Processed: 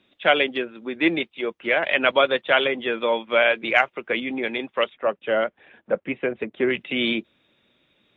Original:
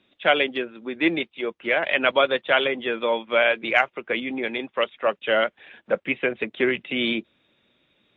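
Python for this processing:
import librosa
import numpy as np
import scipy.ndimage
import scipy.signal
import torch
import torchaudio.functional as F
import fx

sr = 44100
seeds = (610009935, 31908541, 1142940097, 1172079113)

y = fx.lowpass(x, sr, hz=1100.0, slope=6, at=(4.93, 6.69), fade=0.02)
y = y * librosa.db_to_amplitude(1.0)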